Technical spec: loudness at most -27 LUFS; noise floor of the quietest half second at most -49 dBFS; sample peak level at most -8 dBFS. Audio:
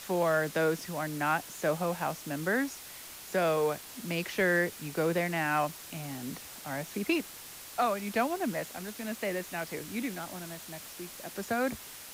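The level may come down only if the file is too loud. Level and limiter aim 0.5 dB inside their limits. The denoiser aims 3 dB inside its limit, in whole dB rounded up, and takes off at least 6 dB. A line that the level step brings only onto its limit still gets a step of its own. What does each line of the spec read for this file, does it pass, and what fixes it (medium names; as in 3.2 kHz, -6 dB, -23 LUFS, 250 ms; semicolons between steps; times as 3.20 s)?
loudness -32.0 LUFS: pass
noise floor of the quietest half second -47 dBFS: fail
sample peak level -17.0 dBFS: pass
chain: noise reduction 6 dB, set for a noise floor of -47 dBFS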